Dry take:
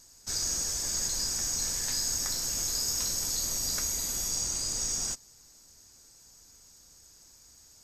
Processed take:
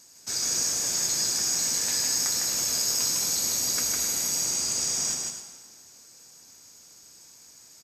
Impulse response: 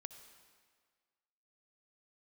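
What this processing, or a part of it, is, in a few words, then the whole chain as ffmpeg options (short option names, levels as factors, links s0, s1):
stadium PA: -filter_complex "[0:a]highpass=150,equalizer=f=2400:t=o:w=0.41:g=4,aecho=1:1:154.5|259.5:0.708|0.251[s0];[1:a]atrim=start_sample=2205[s1];[s0][s1]afir=irnorm=-1:irlink=0,volume=2.51"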